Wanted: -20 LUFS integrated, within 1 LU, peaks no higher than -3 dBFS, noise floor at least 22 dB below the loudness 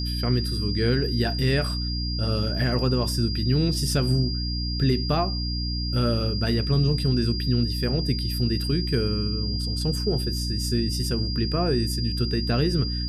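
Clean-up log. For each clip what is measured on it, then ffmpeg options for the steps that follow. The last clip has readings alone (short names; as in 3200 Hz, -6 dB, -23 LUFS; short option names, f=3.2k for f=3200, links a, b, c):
hum 60 Hz; harmonics up to 300 Hz; hum level -26 dBFS; steady tone 4800 Hz; tone level -31 dBFS; loudness -24.5 LUFS; peak -10.5 dBFS; loudness target -20.0 LUFS
-> -af "bandreject=f=60:t=h:w=4,bandreject=f=120:t=h:w=4,bandreject=f=180:t=h:w=4,bandreject=f=240:t=h:w=4,bandreject=f=300:t=h:w=4"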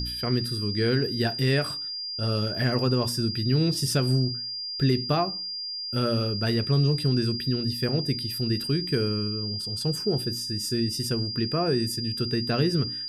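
hum none; steady tone 4800 Hz; tone level -31 dBFS
-> -af "bandreject=f=4.8k:w=30"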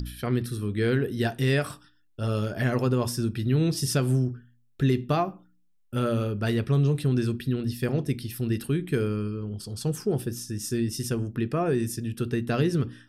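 steady tone none; loudness -27.0 LUFS; peak -12.5 dBFS; loudness target -20.0 LUFS
-> -af "volume=7dB"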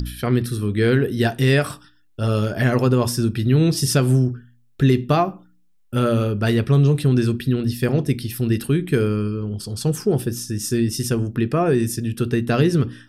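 loudness -20.0 LUFS; peak -5.5 dBFS; noise floor -56 dBFS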